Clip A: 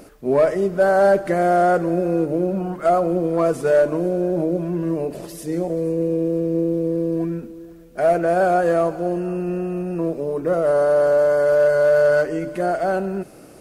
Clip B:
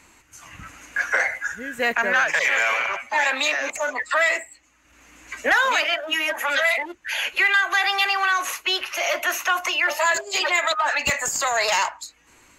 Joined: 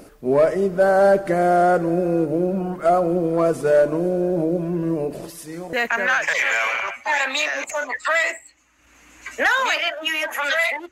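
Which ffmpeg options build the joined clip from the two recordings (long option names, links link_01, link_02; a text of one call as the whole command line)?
ffmpeg -i cue0.wav -i cue1.wav -filter_complex "[0:a]asettb=1/sr,asplit=3[link_01][link_02][link_03];[link_01]atrim=end=5.304[link_04];[link_02]atrim=start=5.3:end=5.73,asetpts=PTS-STARTPTS,afade=type=in:duration=0.004:curve=qsin,afade=type=out:start_time=0.426:duration=0.004:curve=qsin,lowshelf=frequency=750:width_type=q:width=1.5:gain=-8.5[link_05];[link_03]atrim=start=5.726[link_06];[link_04][link_05]acrossfade=duration=0.004:curve1=hsin:curve2=qsin[link_07];[link_07][link_06]acrossfade=duration=0.004:curve1=qsin:curve2=hsin,apad=whole_dur=10.91,atrim=end=10.91,atrim=end=5.732[link_08];[1:a]atrim=start=1.788:end=6.97[link_09];[link_08][link_09]acrossfade=duration=0.004:curve1=hsin:curve2=hsin" out.wav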